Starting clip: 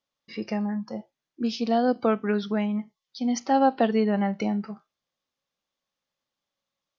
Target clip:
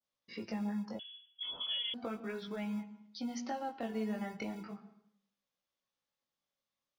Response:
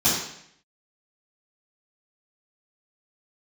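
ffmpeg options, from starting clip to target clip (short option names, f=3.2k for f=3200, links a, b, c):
-filter_complex "[0:a]adynamicequalizer=threshold=0.00891:dfrequency=2300:dqfactor=1:tfrequency=2300:tqfactor=1:attack=5:release=100:ratio=0.375:range=2.5:mode=boostabove:tftype=bell,acrossover=split=130[a][b];[a]acrusher=samples=37:mix=1:aa=0.000001[c];[b]acompressor=threshold=-31dB:ratio=6[d];[c][d]amix=inputs=2:normalize=0,flanger=delay=15.5:depth=7.7:speed=0.36,asplit=2[e][f];[1:a]atrim=start_sample=2205,lowpass=3.8k,adelay=105[g];[f][g]afir=irnorm=-1:irlink=0,volume=-30dB[h];[e][h]amix=inputs=2:normalize=0,asettb=1/sr,asplit=3[i][j][k];[i]atrim=end=0.994[l];[j]atrim=start=0.99:end=1.94,asetpts=PTS-STARTPTS,afade=t=in:d=0.004:c=qsin,afade=t=out:st=0.946:d=0.004:c=qsin,lowpass=f=3.1k:t=q:w=0.5098,lowpass=f=3.1k:t=q:w=0.6013,lowpass=f=3.1k:t=q:w=0.9,lowpass=f=3.1k:t=q:w=2.563,afreqshift=-3600[m];[k]atrim=start=1.936[n];[l][m]acrossfade=d=0.004:c1=hsin:c2=qsin[o];[o][n]acrossfade=d=0.004:c1=qsin:c2=hsin,volume=-3.5dB"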